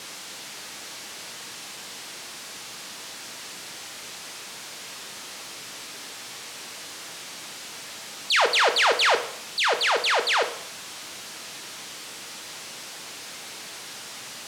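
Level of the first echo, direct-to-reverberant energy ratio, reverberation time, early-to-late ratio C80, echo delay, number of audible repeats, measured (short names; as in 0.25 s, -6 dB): none, 6.5 dB, 0.70 s, 14.0 dB, none, none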